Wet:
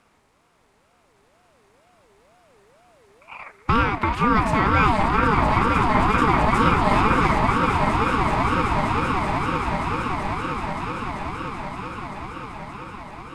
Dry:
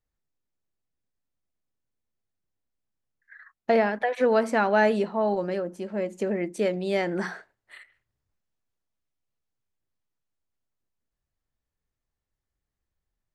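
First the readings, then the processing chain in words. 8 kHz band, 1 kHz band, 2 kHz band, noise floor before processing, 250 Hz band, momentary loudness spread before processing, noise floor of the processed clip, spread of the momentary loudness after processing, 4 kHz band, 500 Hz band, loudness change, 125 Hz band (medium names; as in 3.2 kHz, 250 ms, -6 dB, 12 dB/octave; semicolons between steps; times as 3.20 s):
no reading, +12.5 dB, +8.5 dB, under -85 dBFS, +8.0 dB, 10 LU, -61 dBFS, 16 LU, +11.0 dB, -1.0 dB, +4.5 dB, +17.0 dB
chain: spectral levelling over time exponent 0.6; echo with a slow build-up 192 ms, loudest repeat 8, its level -8 dB; ring modulator with a swept carrier 560 Hz, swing 30%, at 2.1 Hz; trim +3 dB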